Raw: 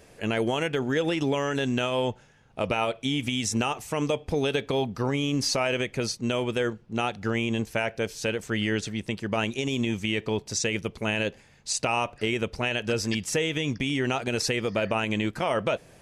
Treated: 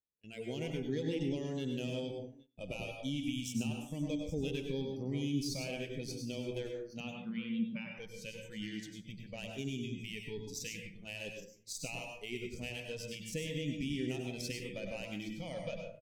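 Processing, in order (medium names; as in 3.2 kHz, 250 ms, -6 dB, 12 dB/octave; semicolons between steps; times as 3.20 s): Chebyshev shaper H 7 -29 dB, 8 -24 dB, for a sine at -12.5 dBFS; 7.00–7.96 s: cabinet simulation 110–4400 Hz, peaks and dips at 120 Hz -8 dB, 190 Hz +10 dB, 670 Hz -6 dB, 1.1 kHz +9 dB; delay 818 ms -15.5 dB; spectral noise reduction 19 dB; plate-style reverb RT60 0.5 s, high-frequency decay 0.5×, pre-delay 85 ms, DRR 1.5 dB; gate with hold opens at -39 dBFS; FFT filter 250 Hz 0 dB, 500 Hz -6 dB, 1.2 kHz -27 dB, 2.3 kHz -7 dB; trim -7 dB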